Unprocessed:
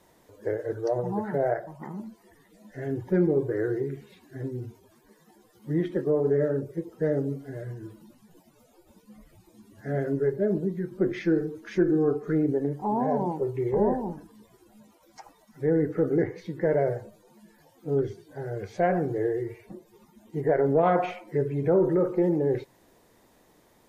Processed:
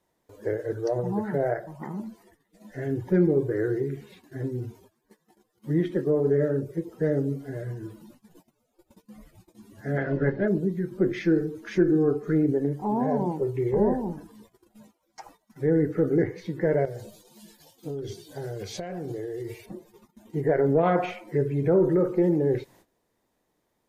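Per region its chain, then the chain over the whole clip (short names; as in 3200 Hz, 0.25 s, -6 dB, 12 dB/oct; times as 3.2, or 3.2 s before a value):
9.96–10.47 spectral limiter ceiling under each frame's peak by 18 dB + Gaussian blur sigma 2.4 samples
16.85–19.66 resonant high shelf 2500 Hz +9.5 dB, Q 1.5 + compressor 10:1, threshold -32 dBFS
whole clip: gate -55 dBFS, range -17 dB; dynamic EQ 820 Hz, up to -5 dB, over -39 dBFS, Q 0.83; gain +3 dB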